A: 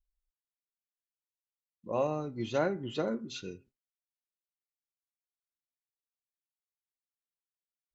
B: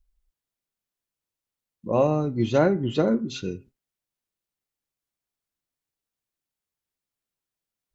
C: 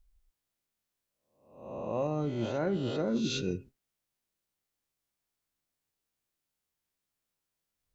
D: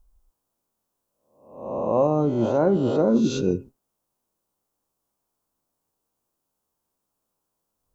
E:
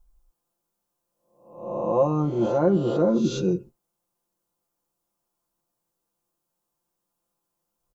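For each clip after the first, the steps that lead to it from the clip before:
low shelf 430 Hz +8.5 dB; gain +6 dB
spectral swells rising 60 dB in 0.64 s; reverse; compressor 16:1, threshold -27 dBFS, peak gain reduction 15 dB; reverse
graphic EQ 250/500/1000/2000/4000 Hz +4/+4/+8/-11/-5 dB; gain +6.5 dB
comb 5.8 ms, depth 99%; gain -4 dB

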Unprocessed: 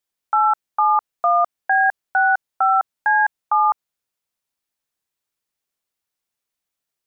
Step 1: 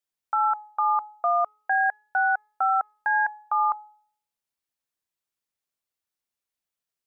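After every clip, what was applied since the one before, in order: de-hum 422.7 Hz, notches 34; gain -6 dB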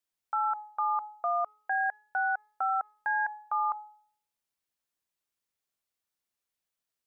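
limiter -22 dBFS, peak gain reduction 6.5 dB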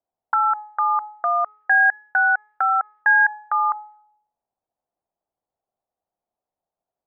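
envelope low-pass 730–1800 Hz up, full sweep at -35 dBFS; gain +5 dB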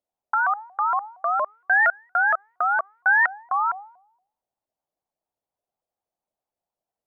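shaped vibrato saw up 4.3 Hz, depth 250 cents; gain -2.5 dB

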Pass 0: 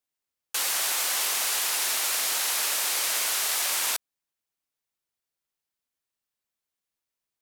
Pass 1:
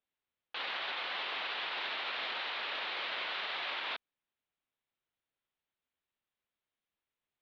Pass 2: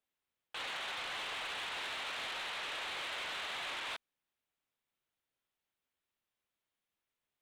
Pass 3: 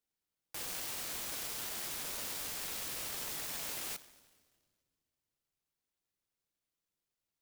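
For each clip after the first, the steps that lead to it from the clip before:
steep low-pass 3800 Hz 48 dB/oct; limiter -29 dBFS, peak gain reduction 8 dB
soft clip -37.5 dBFS, distortion -12 dB; gain +1 dB
reverb RT60 1.8 s, pre-delay 6 ms, DRR 12 dB; noise-modulated delay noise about 4400 Hz, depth 0.35 ms

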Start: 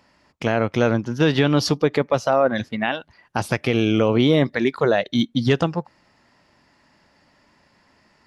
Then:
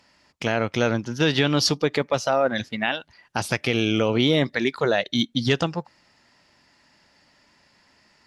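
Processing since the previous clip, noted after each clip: bell 5600 Hz +8 dB 3 oct; notch 1100 Hz, Q 22; gain -4 dB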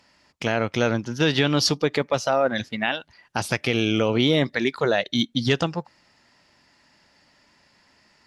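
nothing audible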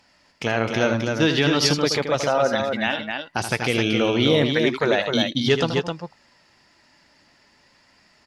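flange 0.5 Hz, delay 1.2 ms, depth 2.4 ms, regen +76%; on a send: loudspeakers at several distances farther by 27 m -9 dB, 89 m -5 dB; on the sum: gain +5 dB

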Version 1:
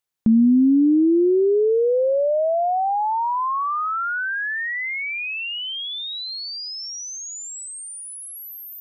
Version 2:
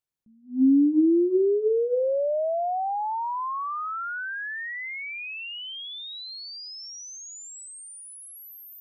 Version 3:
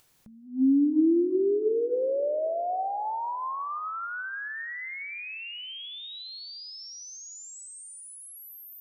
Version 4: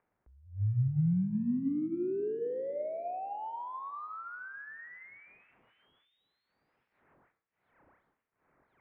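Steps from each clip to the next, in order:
low shelf 360 Hz +9.5 dB; notches 60/120/180/240/300/360/420/480 Hz; attack slew limiter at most 200 dB/s; gain -8 dB
split-band echo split 600 Hz, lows 0.267 s, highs 0.168 s, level -15 dB; on a send at -17.5 dB: reverb RT60 0.50 s, pre-delay 5 ms; on the sum: upward compressor, threshold -39 dBFS; gain -3 dB
median filter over 15 samples; mistuned SSB -160 Hz 220–2500 Hz; de-hum 112.9 Hz, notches 33; gain -6 dB

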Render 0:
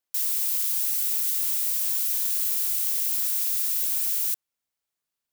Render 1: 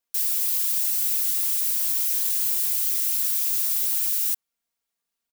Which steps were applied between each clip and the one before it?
comb 4.3 ms, depth 71%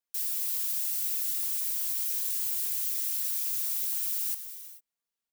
non-linear reverb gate 0.47 s flat, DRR 8.5 dB; gain -7.5 dB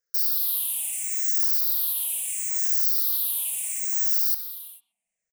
moving spectral ripple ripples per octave 0.55, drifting -0.74 Hz, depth 23 dB; speakerphone echo 0.13 s, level -14 dB

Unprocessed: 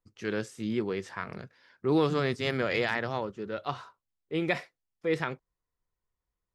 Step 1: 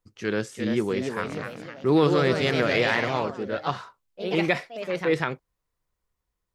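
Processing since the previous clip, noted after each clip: echoes that change speed 0.377 s, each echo +2 st, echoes 3, each echo -6 dB; gain +5 dB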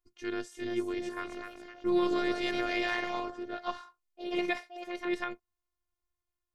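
robotiser 354 Hz; gain -6 dB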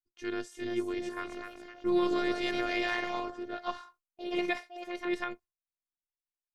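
gate with hold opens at -45 dBFS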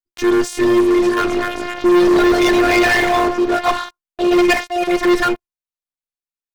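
sample leveller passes 5; gain +7 dB

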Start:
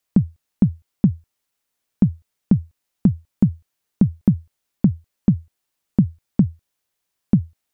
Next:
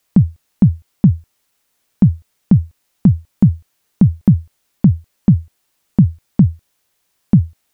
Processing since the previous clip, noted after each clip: maximiser +12 dB; gain -1 dB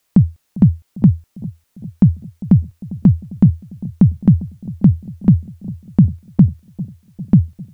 analogue delay 0.4 s, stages 2048, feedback 65%, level -18 dB

